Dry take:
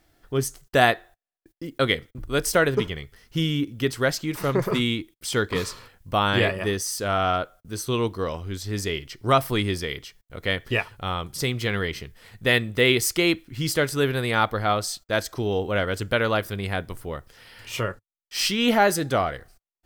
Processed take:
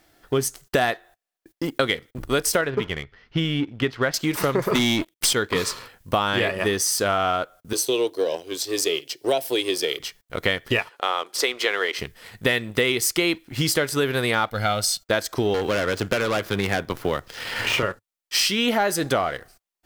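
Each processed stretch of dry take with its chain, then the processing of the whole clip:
2.61–4.14 s: Gaussian low-pass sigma 2.4 samples + peaking EQ 390 Hz -4 dB 2.6 oct
4.75–5.33 s: partial rectifier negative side -7 dB + waveshaping leveller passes 3
7.73–10.00 s: high-pass 180 Hz 24 dB/octave + peaking EQ 2 kHz -8 dB 0.21 oct + static phaser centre 500 Hz, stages 4
10.89–11.99 s: high-pass 380 Hz 24 dB/octave + treble shelf 9.1 kHz -12 dB
14.50–15.03 s: peaking EQ 880 Hz -9 dB 1.8 oct + comb 1.4 ms, depth 63%
15.54–17.83 s: median filter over 5 samples + overload inside the chain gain 24 dB + three bands compressed up and down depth 70%
whole clip: bass shelf 140 Hz -11 dB; waveshaping leveller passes 1; compression, threshold -27 dBFS; trim +8 dB

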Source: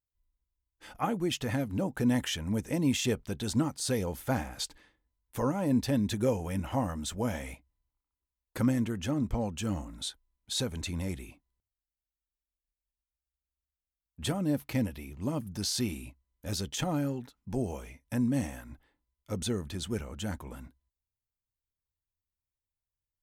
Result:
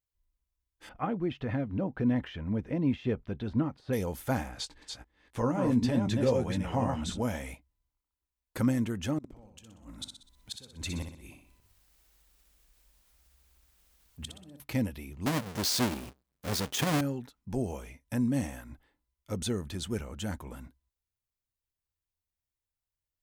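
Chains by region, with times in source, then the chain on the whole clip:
0.89–3.93 s: band-stop 860 Hz, Q 16 + de-esser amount 90% + distance through air 360 m
4.51–7.22 s: chunks repeated in reverse 259 ms, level -4 dB + distance through air 57 m + doubling 17 ms -9 dB
9.18–14.60 s: upward compressor, threshold -45 dBFS + inverted gate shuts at -25 dBFS, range -24 dB + feedback delay 62 ms, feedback 48%, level -6.5 dB
15.26–17.01 s: square wave that keeps the level + high-pass 160 Hz 6 dB/octave
whole clip: none

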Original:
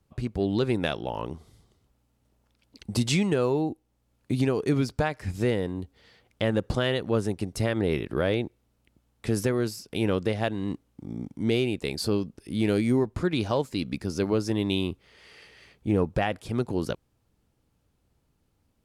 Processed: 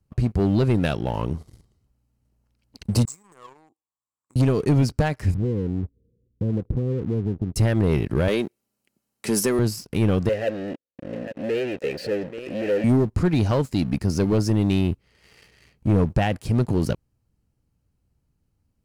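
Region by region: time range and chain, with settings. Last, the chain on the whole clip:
3.05–4.36 s: compression 5:1, threshold -25 dBFS + two resonant band-passes 2.9 kHz, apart 2.8 oct
5.34–7.56 s: steep low-pass 510 Hz 96 dB/octave + compression 3:1, threshold -31 dBFS
8.28–9.59 s: high-pass 270 Hz + treble shelf 4.5 kHz +8.5 dB + comb 5.1 ms, depth 32%
10.29–12.84 s: delay 834 ms -22.5 dB + waveshaping leveller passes 5 + vowel filter e
whole clip: tone controls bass +9 dB, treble +2 dB; band-stop 3.5 kHz, Q 8.2; waveshaping leveller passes 2; trim -3.5 dB

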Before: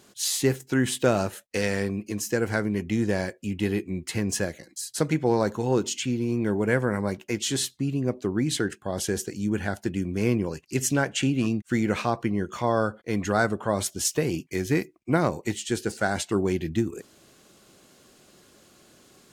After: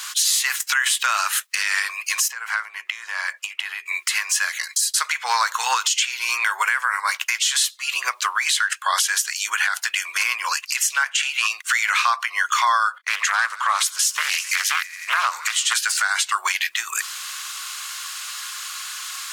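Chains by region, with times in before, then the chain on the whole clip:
2.28–3.86 s: treble shelf 2.7 kHz -11 dB + compression 10:1, threshold -35 dBFS
12.98–15.74 s: gate -54 dBFS, range -17 dB + feedback echo behind a high-pass 88 ms, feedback 75%, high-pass 1.4 kHz, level -23.5 dB + loudspeaker Doppler distortion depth 0.46 ms
whole clip: elliptic high-pass 1.1 kHz, stop band 80 dB; compression 6:1, threshold -43 dBFS; loudness maximiser +35.5 dB; trim -8 dB

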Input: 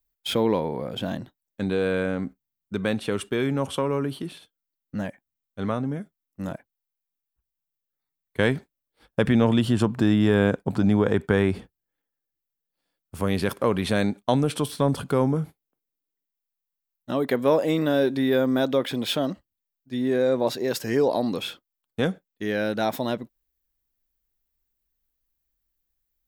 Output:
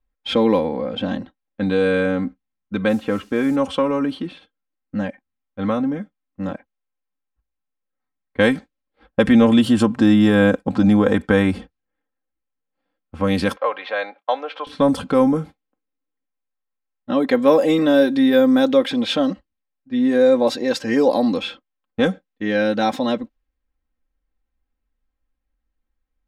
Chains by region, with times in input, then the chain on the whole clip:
2.88–3.55 s: low-pass 2 kHz + added noise violet -45 dBFS
13.56–14.67 s: high-pass 560 Hz 24 dB/octave + distance through air 220 m
whole clip: level-controlled noise filter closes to 2 kHz, open at -16.5 dBFS; comb 3.8 ms, depth 72%; trim +4 dB

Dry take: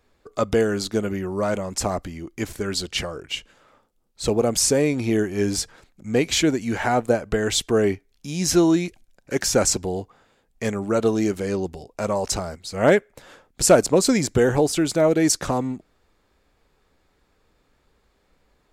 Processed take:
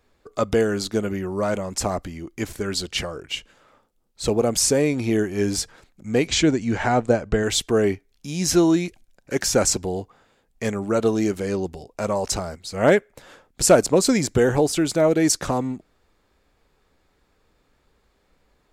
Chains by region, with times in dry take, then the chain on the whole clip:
6.27–7.43 s: low-pass 8.3 kHz 24 dB/octave + bass shelf 200 Hz +5 dB + tape noise reduction on one side only decoder only
whole clip: none

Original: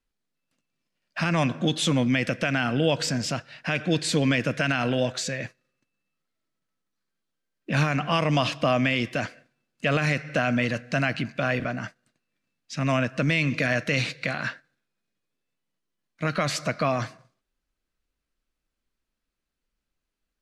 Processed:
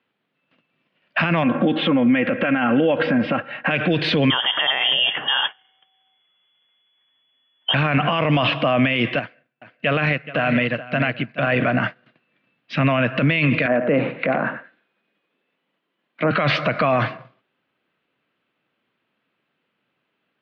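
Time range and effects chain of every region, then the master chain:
1.43–3.71 s: low-pass 1.9 kHz + comb 3.7 ms, depth 62% + compression 4:1, threshold -27 dBFS
4.30–7.74 s: compression 2:1, threshold -29 dBFS + frequency inversion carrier 3.4 kHz
9.19–11.47 s: delay 425 ms -9.5 dB + upward expansion 2.5:1, over -33 dBFS
13.66–16.31 s: high-pass 180 Hz 24 dB/octave + low-pass that closes with the level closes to 840 Hz, closed at -26.5 dBFS + delay 93 ms -12 dB
whole clip: elliptic band-pass 120–3100 Hz, stop band 40 dB; bass shelf 220 Hz -5.5 dB; loudness maximiser +25.5 dB; trim -9 dB

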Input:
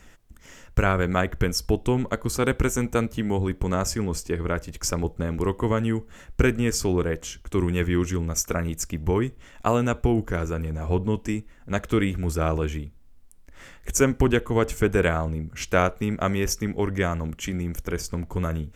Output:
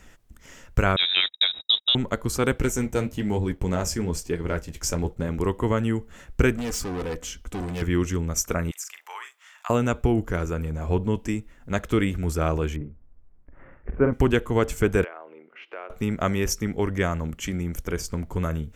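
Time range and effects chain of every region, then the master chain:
0.96–1.95 s: zero-crossing glitches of -26.5 dBFS + gate -28 dBFS, range -44 dB + frequency inversion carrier 3.8 kHz
2.56–5.29 s: peaking EQ 1.2 kHz -7 dB 0.26 oct + waveshaping leveller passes 1 + flange 1.1 Hz, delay 6 ms, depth 9.4 ms, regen -51%
6.57–7.82 s: hard clipper -27.5 dBFS + comb 4 ms, depth 37%
8.71–9.70 s: inverse Chebyshev high-pass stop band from 210 Hz, stop band 70 dB + doubling 43 ms -7.5 dB + compression 2:1, threshold -34 dBFS
12.76–14.13 s: Gaussian low-pass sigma 5.4 samples + doubling 47 ms -6 dB
15.04–15.90 s: elliptic band-pass 360–2800 Hz, stop band 60 dB + compression 2:1, threshold -46 dBFS
whole clip: none

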